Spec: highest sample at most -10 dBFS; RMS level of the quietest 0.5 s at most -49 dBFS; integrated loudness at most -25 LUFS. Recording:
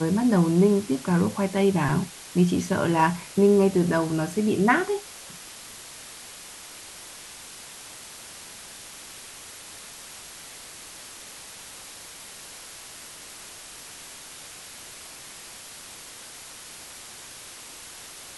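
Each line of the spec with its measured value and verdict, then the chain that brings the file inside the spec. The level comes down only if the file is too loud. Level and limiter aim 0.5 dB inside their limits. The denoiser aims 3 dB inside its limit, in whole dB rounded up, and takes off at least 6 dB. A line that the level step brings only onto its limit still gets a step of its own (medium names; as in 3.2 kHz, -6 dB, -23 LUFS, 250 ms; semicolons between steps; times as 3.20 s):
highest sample -7.5 dBFS: fail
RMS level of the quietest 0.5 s -43 dBFS: fail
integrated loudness -22.5 LUFS: fail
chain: noise reduction 6 dB, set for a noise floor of -43 dBFS; trim -3 dB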